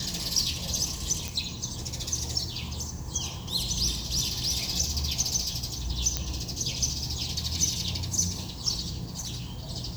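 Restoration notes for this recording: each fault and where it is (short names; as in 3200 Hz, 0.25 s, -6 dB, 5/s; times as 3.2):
1.28 pop
6.17 pop -10 dBFS
9.1–9.63 clipped -30 dBFS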